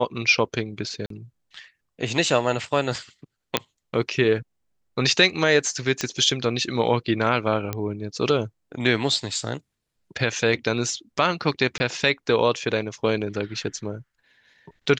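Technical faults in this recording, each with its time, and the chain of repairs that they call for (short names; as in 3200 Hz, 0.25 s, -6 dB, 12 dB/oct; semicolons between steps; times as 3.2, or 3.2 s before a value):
1.06–1.1 gap 43 ms
3.57 pop -3 dBFS
6.01 pop -10 dBFS
7.73 pop -12 dBFS
11.78–11.8 gap 20 ms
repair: de-click; interpolate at 1.06, 43 ms; interpolate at 11.78, 20 ms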